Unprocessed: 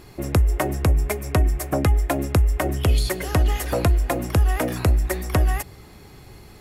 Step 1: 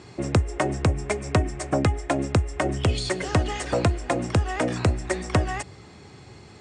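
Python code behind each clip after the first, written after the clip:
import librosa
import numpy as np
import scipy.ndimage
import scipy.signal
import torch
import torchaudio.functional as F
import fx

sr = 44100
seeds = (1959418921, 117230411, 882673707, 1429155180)

y = scipy.signal.sosfilt(scipy.signal.butter(16, 9100.0, 'lowpass', fs=sr, output='sos'), x)
y = fx.rider(y, sr, range_db=10, speed_s=0.5)
y = scipy.signal.sosfilt(scipy.signal.butter(4, 78.0, 'highpass', fs=sr, output='sos'), y)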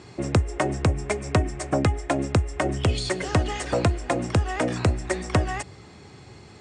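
y = x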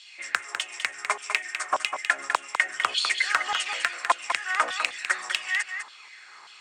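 y = np.clip(10.0 ** (13.5 / 20.0) * x, -1.0, 1.0) / 10.0 ** (13.5 / 20.0)
y = fx.filter_lfo_highpass(y, sr, shape='saw_down', hz=1.7, low_hz=1000.0, high_hz=3300.0, q=4.5)
y = y + 10.0 ** (-7.5 / 20.0) * np.pad(y, (int(201 * sr / 1000.0), 0))[:len(y)]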